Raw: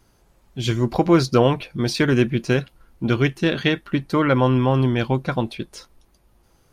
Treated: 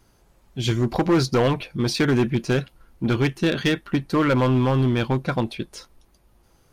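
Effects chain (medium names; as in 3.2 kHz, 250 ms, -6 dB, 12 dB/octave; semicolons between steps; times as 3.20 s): hard clipper -14 dBFS, distortion -11 dB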